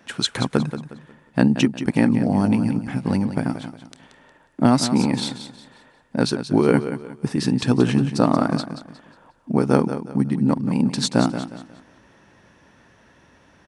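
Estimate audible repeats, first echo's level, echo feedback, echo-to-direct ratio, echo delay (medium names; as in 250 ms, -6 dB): 3, -10.5 dB, 33%, -10.0 dB, 180 ms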